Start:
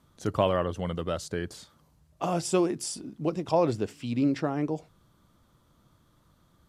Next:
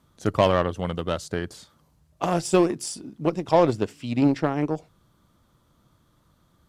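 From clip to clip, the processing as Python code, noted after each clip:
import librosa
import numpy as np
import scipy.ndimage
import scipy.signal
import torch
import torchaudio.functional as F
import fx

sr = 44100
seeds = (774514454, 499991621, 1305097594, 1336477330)

y = fx.cheby_harmonics(x, sr, harmonics=(7,), levels_db=(-22,), full_scale_db=-9.5)
y = 10.0 ** (-14.0 / 20.0) * np.tanh(y / 10.0 ** (-14.0 / 20.0))
y = y * librosa.db_to_amplitude(8.0)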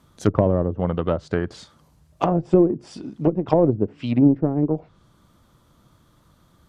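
y = fx.env_lowpass_down(x, sr, base_hz=430.0, full_db=-19.5)
y = y * librosa.db_to_amplitude(5.5)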